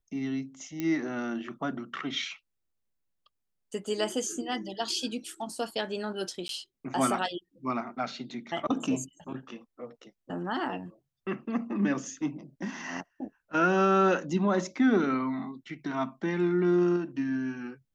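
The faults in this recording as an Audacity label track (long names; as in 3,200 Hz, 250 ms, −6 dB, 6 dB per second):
0.800000	0.800000	click −18 dBFS
6.480000	6.490000	drop-out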